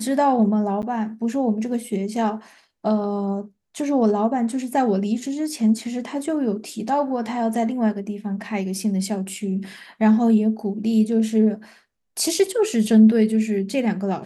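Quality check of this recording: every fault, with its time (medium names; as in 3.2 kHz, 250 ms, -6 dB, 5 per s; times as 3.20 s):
0.82–0.83 s: dropout 9.3 ms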